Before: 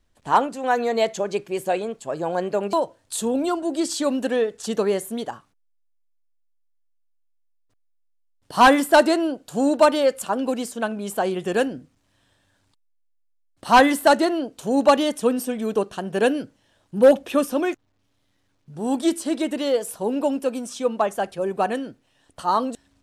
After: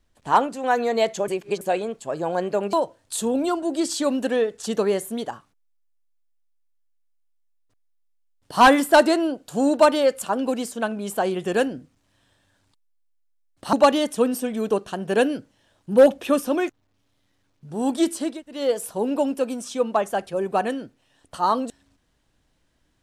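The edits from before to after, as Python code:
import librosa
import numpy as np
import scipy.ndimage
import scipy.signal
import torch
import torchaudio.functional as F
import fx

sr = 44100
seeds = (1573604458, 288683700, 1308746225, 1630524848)

y = fx.edit(x, sr, fx.reverse_span(start_s=1.28, length_s=0.33),
    fx.cut(start_s=13.73, length_s=1.05),
    fx.room_tone_fill(start_s=19.37, length_s=0.26, crossfade_s=0.24), tone=tone)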